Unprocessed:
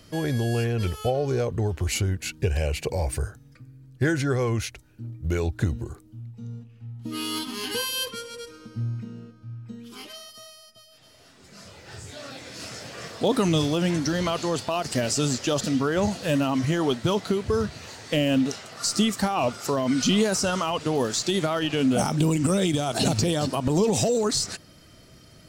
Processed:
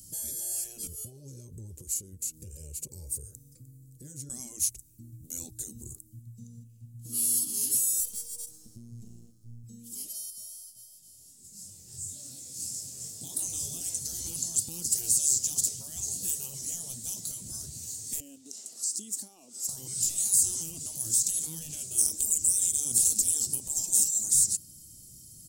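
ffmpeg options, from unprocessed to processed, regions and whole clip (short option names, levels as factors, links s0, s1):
-filter_complex "[0:a]asettb=1/sr,asplit=3[s0][s1][s2];[s0]atrim=end=0.874[s3];[s1]atrim=start=0.87:end=4.3,asetpts=PTS-STARTPTS,afade=t=in:d=0.004:c=qsin,afade=t=out:st=3.426:d=0.004:c=qsin,acompressor=threshold=0.01:ratio=3:attack=3.2:release=140:knee=1:detection=peak,asuperstop=centerf=700:order=4:qfactor=3.7,equalizer=f=500:t=o:w=0.85:g=13[s4];[s2]atrim=start=4.296[s5];[s3][s4]acrossfade=d=0.004:c1=hsin:c2=qsin[s6];[s6][s5]acrossfade=d=0.004:c1=qsin:c2=hsin,asettb=1/sr,asplit=3[s7][s8][s9];[s7]atrim=end=8.004[s10];[s8]atrim=start=8:end=9.64,asetpts=PTS-STARTPTS,afade=t=in:d=0.004:c=qsin,afade=t=out:st=1.636:d=0.004:c=qsin,acompressor=threshold=0.0251:ratio=2:attack=3.2:release=140:knee=1:detection=peak,aeval=exprs='max(val(0),0)':c=same[s11];[s9]atrim=start=9.636[s12];[s10][s11]acrossfade=d=0.004:c1=hsin:c2=qsin[s13];[s13][s12]acrossfade=d=0.004:c1=qsin:c2=hsin,asettb=1/sr,asplit=3[s14][s15][s16];[s14]atrim=end=10.304[s17];[s15]atrim=start=10.3:end=13.81,asetpts=PTS-STARTPTS,afade=t=in:d=0.004:c=qsin,afade=t=out:st=3.506:d=0.004:c=qsin,asplit=5[s18][s19][s20][s21][s22];[s19]adelay=130,afreqshift=100,volume=0.211[s23];[s20]adelay=260,afreqshift=200,volume=0.0871[s24];[s21]adelay=390,afreqshift=300,volume=0.0355[s25];[s22]adelay=520,afreqshift=400,volume=0.0146[s26];[s18][s23][s24][s25][s26]amix=inputs=5:normalize=0,atrim=end_sample=154791,flanger=delay=20:depth=4.6:speed=2.8[s27];[s16]atrim=start=13.806[s28];[s17][s27]acrossfade=d=0.004:c1=hsin:c2=qsin[s29];[s29][s28]acrossfade=d=0.004:c1=qsin:c2=hsin,asettb=1/sr,asplit=3[s30][s31][s32];[s30]atrim=end=18.204[s33];[s31]atrim=start=18.2:end=19.69,asetpts=PTS-STARTPTS,afade=t=in:d=0.004:c=qsin,afade=t=out:st=1.486:d=0.004:c=qsin,highpass=f=260:w=0.5412,highpass=f=260:w=1.3066,highshelf=f=8700:g=-11.5,acompressor=threshold=0.0178:ratio=5:attack=3.2:release=140:knee=1:detection=peak[s34];[s32]atrim=start=19.686[s35];[s33][s34]acrossfade=d=0.004:c1=hsin:c2=qsin[s36];[s36][s35]acrossfade=d=0.004:c1=qsin:c2=hsin,highshelf=f=2200:g=8.5,afftfilt=real='re*lt(hypot(re,im),0.178)':imag='im*lt(hypot(re,im),0.178)':win_size=1024:overlap=0.75,firequalizer=gain_entry='entry(140,0);entry(530,-16);entry(1400,-29);entry(7400,11)':delay=0.05:min_phase=1,volume=0.596"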